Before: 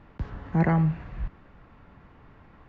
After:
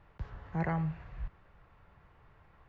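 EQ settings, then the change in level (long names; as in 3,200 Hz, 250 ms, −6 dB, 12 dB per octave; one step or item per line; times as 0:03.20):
parametric band 250 Hz −13 dB 0.74 octaves
−7.0 dB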